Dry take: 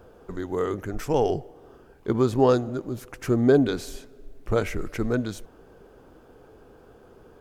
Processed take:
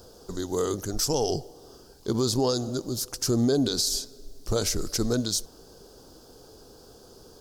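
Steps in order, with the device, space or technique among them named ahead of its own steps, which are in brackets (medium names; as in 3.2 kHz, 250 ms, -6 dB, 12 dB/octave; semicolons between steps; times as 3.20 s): over-bright horn tweeter (resonant high shelf 3.3 kHz +14 dB, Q 3; peak limiter -15 dBFS, peak gain reduction 9.5 dB)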